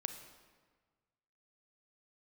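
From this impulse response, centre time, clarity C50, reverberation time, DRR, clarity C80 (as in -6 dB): 21 ms, 8.5 dB, 1.5 s, 7.5 dB, 10.0 dB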